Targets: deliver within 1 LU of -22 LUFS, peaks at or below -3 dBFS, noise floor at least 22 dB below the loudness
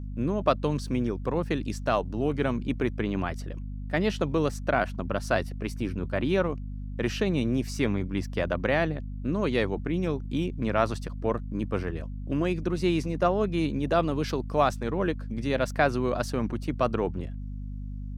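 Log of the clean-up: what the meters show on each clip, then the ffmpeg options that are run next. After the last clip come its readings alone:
hum 50 Hz; highest harmonic 250 Hz; hum level -33 dBFS; loudness -28.5 LUFS; peak level -7.5 dBFS; loudness target -22.0 LUFS
-> -af "bandreject=f=50:t=h:w=6,bandreject=f=100:t=h:w=6,bandreject=f=150:t=h:w=6,bandreject=f=200:t=h:w=6,bandreject=f=250:t=h:w=6"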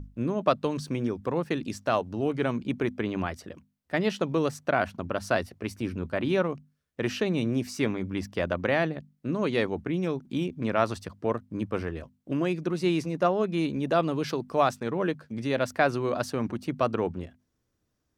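hum not found; loudness -29.0 LUFS; peak level -8.5 dBFS; loudness target -22.0 LUFS
-> -af "volume=2.24,alimiter=limit=0.708:level=0:latency=1"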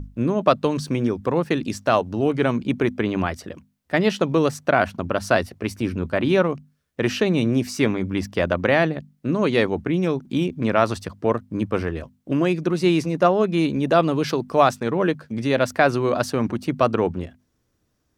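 loudness -22.0 LUFS; peak level -3.0 dBFS; noise floor -70 dBFS

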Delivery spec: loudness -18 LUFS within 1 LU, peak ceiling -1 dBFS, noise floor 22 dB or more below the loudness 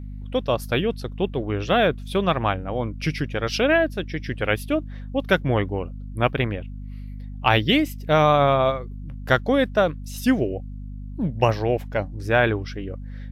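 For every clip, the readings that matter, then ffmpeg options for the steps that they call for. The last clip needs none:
hum 50 Hz; highest harmonic 250 Hz; hum level -32 dBFS; loudness -23.0 LUFS; peak level -2.0 dBFS; loudness target -18.0 LUFS
-> -af "bandreject=f=50:t=h:w=6,bandreject=f=100:t=h:w=6,bandreject=f=150:t=h:w=6,bandreject=f=200:t=h:w=6,bandreject=f=250:t=h:w=6"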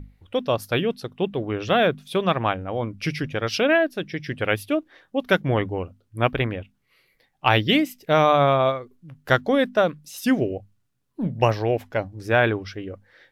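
hum not found; loudness -23.0 LUFS; peak level -2.0 dBFS; loudness target -18.0 LUFS
-> -af "volume=1.78,alimiter=limit=0.891:level=0:latency=1"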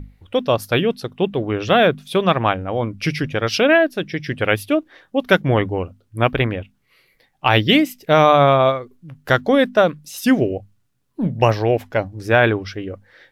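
loudness -18.0 LUFS; peak level -1.0 dBFS; noise floor -65 dBFS

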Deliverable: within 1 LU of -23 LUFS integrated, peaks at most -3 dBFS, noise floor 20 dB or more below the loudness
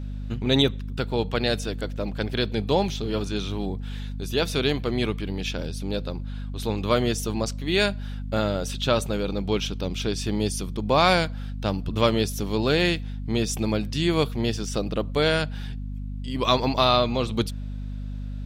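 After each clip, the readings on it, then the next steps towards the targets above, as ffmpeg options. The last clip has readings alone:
hum 50 Hz; highest harmonic 250 Hz; hum level -30 dBFS; loudness -25.5 LUFS; peak level -5.5 dBFS; loudness target -23.0 LUFS
-> -af "bandreject=f=50:t=h:w=6,bandreject=f=100:t=h:w=6,bandreject=f=150:t=h:w=6,bandreject=f=200:t=h:w=6,bandreject=f=250:t=h:w=6"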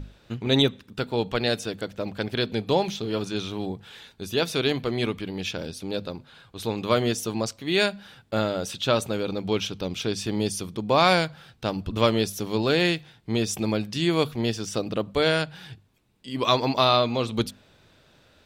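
hum not found; loudness -25.5 LUFS; peak level -6.0 dBFS; loudness target -23.0 LUFS
-> -af "volume=1.33"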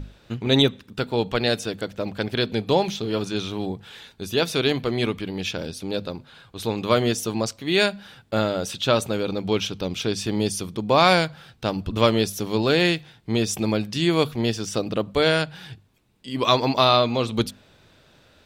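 loudness -23.5 LUFS; peak level -3.5 dBFS; noise floor -56 dBFS

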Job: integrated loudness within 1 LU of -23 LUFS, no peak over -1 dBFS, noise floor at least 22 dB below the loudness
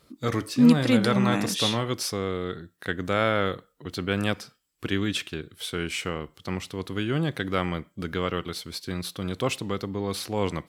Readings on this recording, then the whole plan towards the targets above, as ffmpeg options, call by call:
loudness -27.0 LUFS; peak level -7.0 dBFS; loudness target -23.0 LUFS
-> -af "volume=1.58"

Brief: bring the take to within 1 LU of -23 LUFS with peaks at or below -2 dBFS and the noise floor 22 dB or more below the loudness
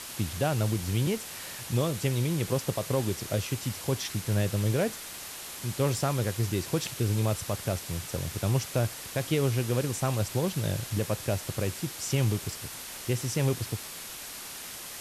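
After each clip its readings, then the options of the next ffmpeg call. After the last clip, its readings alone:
noise floor -41 dBFS; noise floor target -52 dBFS; loudness -30.0 LUFS; peak level -16.0 dBFS; loudness target -23.0 LUFS
-> -af "afftdn=nr=11:nf=-41"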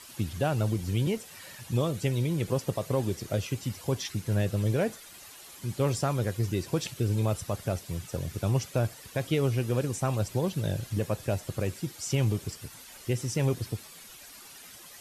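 noise floor -49 dBFS; noise floor target -53 dBFS
-> -af "afftdn=nr=6:nf=-49"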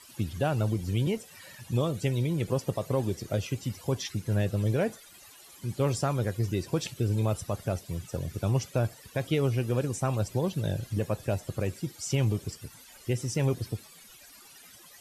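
noise floor -53 dBFS; loudness -30.5 LUFS; peak level -16.5 dBFS; loudness target -23.0 LUFS
-> -af "volume=2.37"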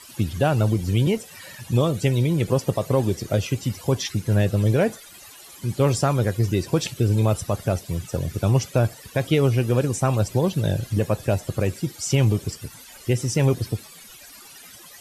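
loudness -23.0 LUFS; peak level -9.5 dBFS; noise floor -45 dBFS

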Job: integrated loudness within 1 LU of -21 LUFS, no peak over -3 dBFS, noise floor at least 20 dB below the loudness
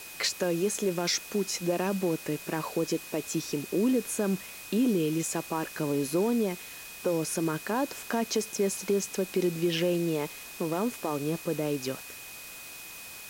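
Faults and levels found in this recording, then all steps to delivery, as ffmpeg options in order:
steady tone 2.5 kHz; tone level -47 dBFS; noise floor -44 dBFS; noise floor target -50 dBFS; loudness -30.0 LUFS; peak level -16.0 dBFS; loudness target -21.0 LUFS
-> -af "bandreject=f=2500:w=30"
-af "afftdn=nr=6:nf=-44"
-af "volume=2.82"

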